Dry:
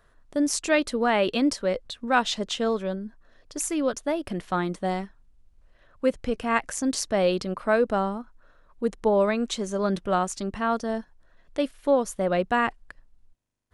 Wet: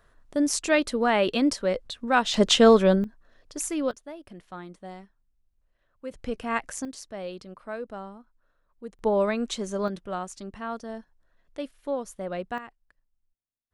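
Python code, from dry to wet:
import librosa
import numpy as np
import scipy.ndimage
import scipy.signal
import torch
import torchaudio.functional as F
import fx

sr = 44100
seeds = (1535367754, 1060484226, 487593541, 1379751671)

y = fx.gain(x, sr, db=fx.steps((0.0, 0.0), (2.34, 10.0), (3.04, -2.0), (3.91, -14.0), (6.11, -4.0), (6.85, -13.5), (8.99, -2.0), (9.88, -8.5), (12.58, -19.0)))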